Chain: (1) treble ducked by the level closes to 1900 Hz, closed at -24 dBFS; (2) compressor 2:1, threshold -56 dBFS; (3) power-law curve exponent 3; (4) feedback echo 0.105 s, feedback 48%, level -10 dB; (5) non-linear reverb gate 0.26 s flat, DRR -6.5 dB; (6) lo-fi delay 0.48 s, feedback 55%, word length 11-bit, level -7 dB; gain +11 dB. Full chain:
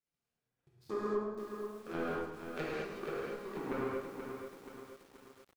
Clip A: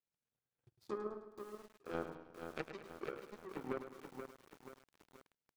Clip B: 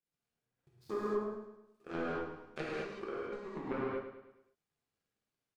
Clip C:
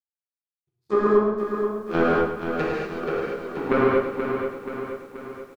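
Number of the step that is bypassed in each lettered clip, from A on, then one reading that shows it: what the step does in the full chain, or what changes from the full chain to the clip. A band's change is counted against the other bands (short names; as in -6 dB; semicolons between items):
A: 5, momentary loudness spread change +4 LU; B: 6, momentary loudness spread change -2 LU; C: 2, mean gain reduction 9.5 dB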